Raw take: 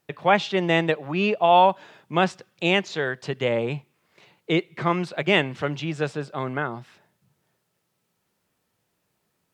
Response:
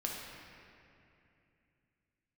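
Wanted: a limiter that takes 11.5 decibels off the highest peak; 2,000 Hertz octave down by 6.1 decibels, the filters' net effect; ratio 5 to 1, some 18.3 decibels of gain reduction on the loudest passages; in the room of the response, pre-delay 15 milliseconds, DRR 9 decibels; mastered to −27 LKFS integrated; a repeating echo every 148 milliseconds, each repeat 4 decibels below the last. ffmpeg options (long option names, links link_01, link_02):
-filter_complex "[0:a]equalizer=frequency=2000:width_type=o:gain=-8,acompressor=threshold=-34dB:ratio=5,alimiter=level_in=7.5dB:limit=-24dB:level=0:latency=1,volume=-7.5dB,aecho=1:1:148|296|444|592|740|888|1036|1184|1332:0.631|0.398|0.25|0.158|0.0994|0.0626|0.0394|0.0249|0.0157,asplit=2[link_01][link_02];[1:a]atrim=start_sample=2205,adelay=15[link_03];[link_02][link_03]afir=irnorm=-1:irlink=0,volume=-11.5dB[link_04];[link_01][link_04]amix=inputs=2:normalize=0,volume=13.5dB"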